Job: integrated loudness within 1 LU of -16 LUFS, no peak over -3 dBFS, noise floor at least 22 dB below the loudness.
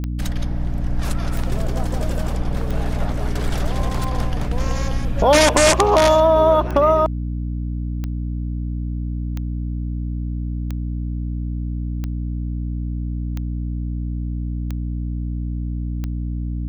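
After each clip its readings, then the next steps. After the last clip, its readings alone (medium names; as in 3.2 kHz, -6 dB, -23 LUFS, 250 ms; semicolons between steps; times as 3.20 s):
clicks found 13; hum 60 Hz; highest harmonic 300 Hz; hum level -22 dBFS; loudness -22.0 LUFS; peak level -4.0 dBFS; loudness target -16.0 LUFS
-> de-click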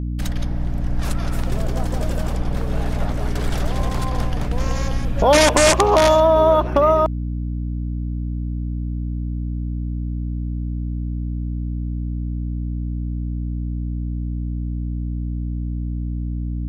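clicks found 0; hum 60 Hz; highest harmonic 300 Hz; hum level -22 dBFS
-> de-hum 60 Hz, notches 5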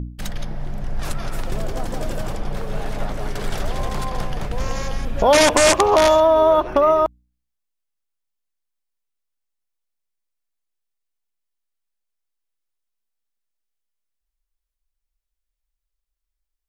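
hum not found; loudness -19.0 LUFS; peak level -4.5 dBFS; loudness target -16.0 LUFS
-> trim +3 dB; peak limiter -3 dBFS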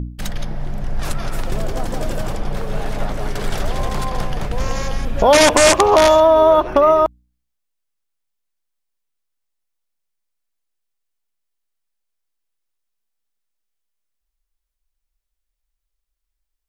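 loudness -16.5 LUFS; peak level -3.0 dBFS; noise floor -78 dBFS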